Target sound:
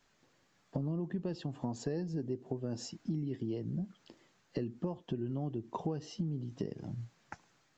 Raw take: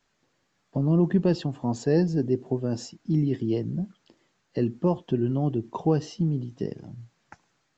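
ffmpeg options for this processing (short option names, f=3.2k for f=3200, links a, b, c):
-af "acompressor=threshold=-34dB:ratio=10,volume=1dB"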